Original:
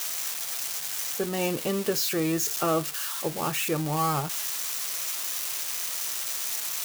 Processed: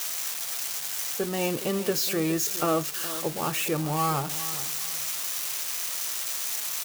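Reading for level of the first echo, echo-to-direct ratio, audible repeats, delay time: −14.0 dB, −13.5 dB, 2, 416 ms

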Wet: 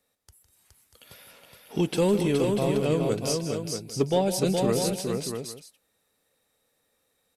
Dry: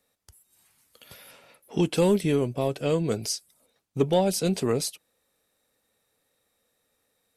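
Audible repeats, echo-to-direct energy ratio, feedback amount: 5, −2.0 dB, repeats not evenly spaced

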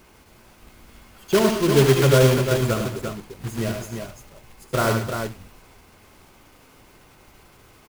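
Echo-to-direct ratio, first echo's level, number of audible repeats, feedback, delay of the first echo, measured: −2.5 dB, −8.5 dB, 4, repeats not evenly spaced, 72 ms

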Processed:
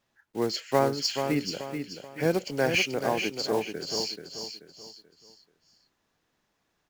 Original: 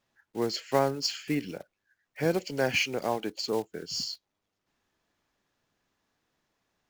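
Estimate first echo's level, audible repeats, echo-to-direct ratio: −7.0 dB, 4, −6.5 dB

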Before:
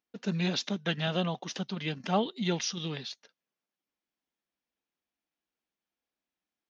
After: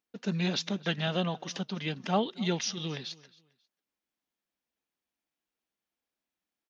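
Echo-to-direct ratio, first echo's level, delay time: −21.5 dB, −22.0 dB, 269 ms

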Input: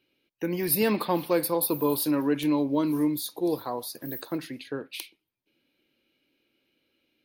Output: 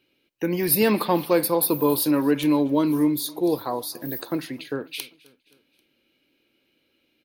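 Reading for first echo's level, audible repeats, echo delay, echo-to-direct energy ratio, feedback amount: −24.0 dB, 3, 264 ms, −22.5 dB, 54%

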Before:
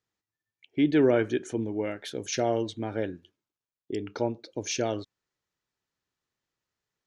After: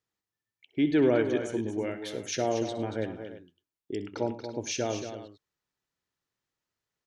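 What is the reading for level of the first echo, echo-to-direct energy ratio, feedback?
−14.0 dB, −7.0 dB, repeats not evenly spaced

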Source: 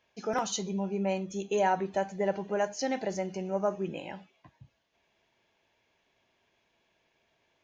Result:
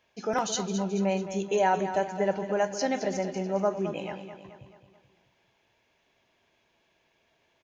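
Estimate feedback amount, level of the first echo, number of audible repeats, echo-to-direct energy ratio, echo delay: 51%, −10.5 dB, 5, −9.0 dB, 216 ms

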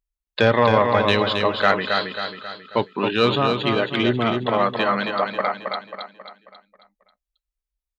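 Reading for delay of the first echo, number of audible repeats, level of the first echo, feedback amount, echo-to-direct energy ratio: 270 ms, 5, −5.0 dB, 46%, −4.0 dB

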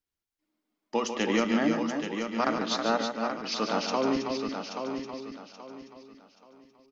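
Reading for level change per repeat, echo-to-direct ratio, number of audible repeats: repeats not evenly spaced, −1.5 dB, 10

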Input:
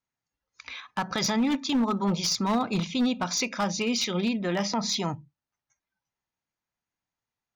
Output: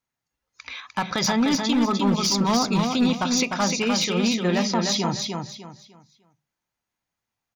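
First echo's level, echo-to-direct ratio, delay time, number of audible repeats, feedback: −4.5 dB, −4.0 dB, 301 ms, 3, 29%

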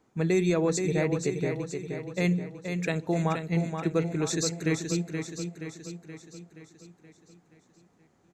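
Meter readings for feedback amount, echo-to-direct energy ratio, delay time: 54%, −5.0 dB, 475 ms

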